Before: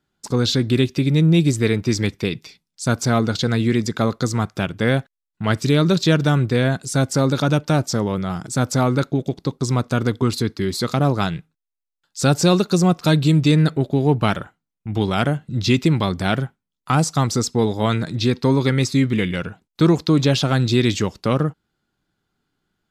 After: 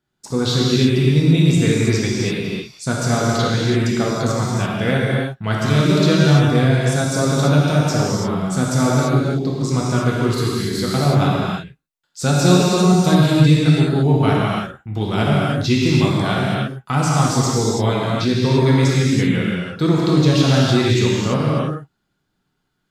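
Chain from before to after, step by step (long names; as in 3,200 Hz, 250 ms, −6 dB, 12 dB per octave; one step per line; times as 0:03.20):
reverb whose tail is shaped and stops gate 360 ms flat, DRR −5.5 dB
level −4 dB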